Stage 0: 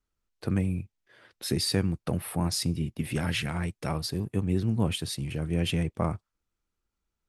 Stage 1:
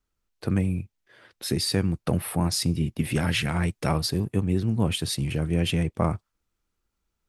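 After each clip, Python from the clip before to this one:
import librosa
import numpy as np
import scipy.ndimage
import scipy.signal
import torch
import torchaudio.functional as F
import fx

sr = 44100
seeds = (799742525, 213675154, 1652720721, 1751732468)

y = fx.rider(x, sr, range_db=10, speed_s=0.5)
y = y * 10.0 ** (4.0 / 20.0)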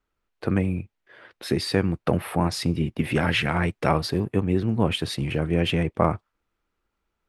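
y = fx.bass_treble(x, sr, bass_db=-7, treble_db=-14)
y = y * 10.0 ** (6.0 / 20.0)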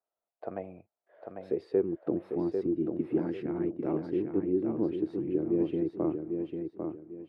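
y = fx.filter_sweep_bandpass(x, sr, from_hz=670.0, to_hz=330.0, start_s=1.06, end_s=2.04, q=5.9)
y = fx.echo_feedback(y, sr, ms=797, feedback_pct=30, wet_db=-5.5)
y = y * 10.0 ** (3.0 / 20.0)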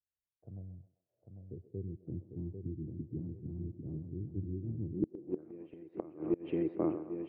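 y = fx.echo_banded(x, sr, ms=130, feedback_pct=54, hz=910.0, wet_db=-11.0)
y = fx.filter_sweep_lowpass(y, sr, from_hz=100.0, to_hz=2500.0, start_s=4.89, end_s=5.52, q=2.2)
y = fx.gate_flip(y, sr, shuts_db=-23.0, range_db=-25)
y = y * 10.0 ** (3.5 / 20.0)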